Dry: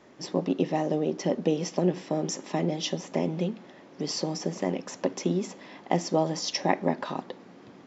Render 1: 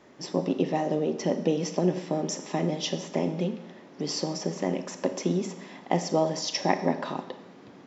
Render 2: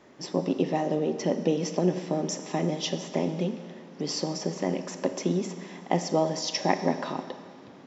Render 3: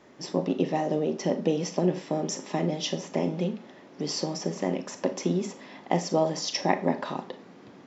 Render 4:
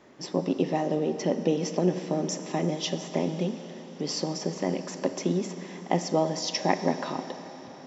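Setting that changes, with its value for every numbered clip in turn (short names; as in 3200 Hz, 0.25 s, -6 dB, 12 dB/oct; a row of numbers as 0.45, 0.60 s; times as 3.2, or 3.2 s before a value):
Schroeder reverb, RT60: 0.89, 1.9, 0.3, 4.3 s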